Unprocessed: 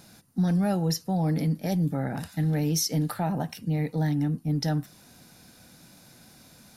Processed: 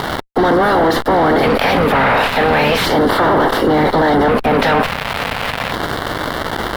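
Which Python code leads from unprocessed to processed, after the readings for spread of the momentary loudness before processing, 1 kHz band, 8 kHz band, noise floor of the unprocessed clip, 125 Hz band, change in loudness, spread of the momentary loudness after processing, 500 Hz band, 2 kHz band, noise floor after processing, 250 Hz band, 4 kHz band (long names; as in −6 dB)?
6 LU, +23.5 dB, +1.5 dB, −54 dBFS, +2.5 dB, +13.0 dB, 8 LU, +21.5 dB, +27.0 dB, −24 dBFS, +10.0 dB, +16.5 dB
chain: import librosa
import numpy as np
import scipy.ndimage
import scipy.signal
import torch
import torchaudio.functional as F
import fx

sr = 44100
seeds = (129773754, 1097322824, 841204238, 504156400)

y = fx.spec_clip(x, sr, under_db=29)
y = scipy.signal.sosfilt(scipy.signal.butter(4, 260.0, 'highpass', fs=sr, output='sos'), y)
y = fx.peak_eq(y, sr, hz=1800.0, db=-3.5, octaves=0.77)
y = fx.leveller(y, sr, passes=3)
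y = fx.fuzz(y, sr, gain_db=40.0, gate_db=-41.0)
y = fx.filter_lfo_notch(y, sr, shape='square', hz=0.35, low_hz=340.0, high_hz=2500.0, q=1.9)
y = fx.air_absorb(y, sr, metres=470.0)
y = fx.env_flatten(y, sr, amount_pct=70)
y = F.gain(torch.from_numpy(y), 4.0).numpy()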